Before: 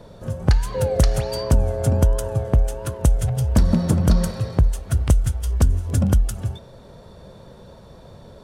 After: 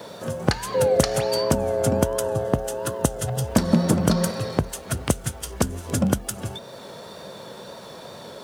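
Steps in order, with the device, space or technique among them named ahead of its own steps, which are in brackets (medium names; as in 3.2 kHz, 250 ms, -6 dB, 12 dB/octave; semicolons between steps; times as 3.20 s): high-pass 200 Hz 12 dB/octave; noise-reduction cassette on a plain deck (tape noise reduction on one side only encoder only; wow and flutter 24 cents; white noise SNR 40 dB); 2.23–3.45 s: band-stop 2.3 kHz, Q 5.9; trim +4 dB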